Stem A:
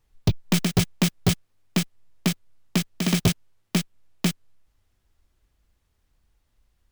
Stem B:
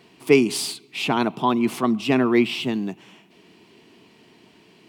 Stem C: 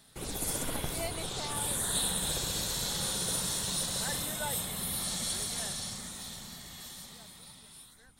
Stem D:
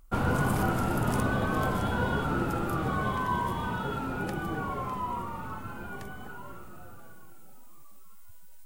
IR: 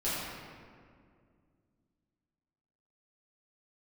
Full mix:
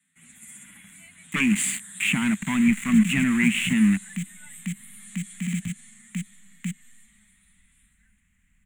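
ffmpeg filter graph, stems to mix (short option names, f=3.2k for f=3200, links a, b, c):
-filter_complex "[0:a]acompressor=threshold=-24dB:ratio=20,adelay=2400,volume=1.5dB[a];[1:a]aeval=exprs='0.75*sin(PI/2*2.51*val(0)/0.75)':c=same,aeval=exprs='val(0)*gte(abs(val(0)),0.15)':c=same,adelay=1050,volume=-12.5dB[b];[2:a]highpass=f=260:p=1,asplit=2[c][d];[d]adelay=8.3,afreqshift=-0.91[e];[c][e]amix=inputs=2:normalize=1,volume=-12dB[f];[a][f]amix=inputs=2:normalize=0,acrossover=split=300|3000[g][h][i];[h]acompressor=threshold=-35dB:ratio=6[j];[g][j][i]amix=inputs=3:normalize=0,alimiter=level_in=2.5dB:limit=-24dB:level=0:latency=1:release=110,volume=-2.5dB,volume=0dB[k];[b]alimiter=limit=-18dB:level=0:latency=1:release=111,volume=0dB[l];[k][l]amix=inputs=2:normalize=0,firequalizer=gain_entry='entry(130,0);entry(200,14);entry(380,-22);entry(2000,14);entry(5100,-21);entry(7200,11);entry(12000,-4)':delay=0.05:min_phase=1"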